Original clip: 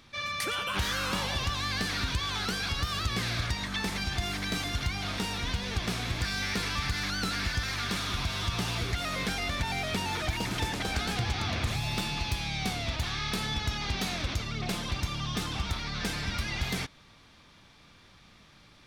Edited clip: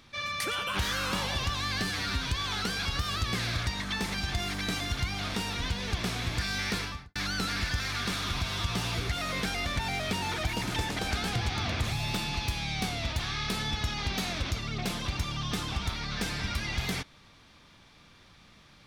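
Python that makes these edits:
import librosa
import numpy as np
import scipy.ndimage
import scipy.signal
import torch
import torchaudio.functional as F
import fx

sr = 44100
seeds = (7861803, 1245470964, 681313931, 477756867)

y = fx.studio_fade_out(x, sr, start_s=6.58, length_s=0.41)
y = fx.edit(y, sr, fx.stretch_span(start_s=1.81, length_s=0.33, factor=1.5), tone=tone)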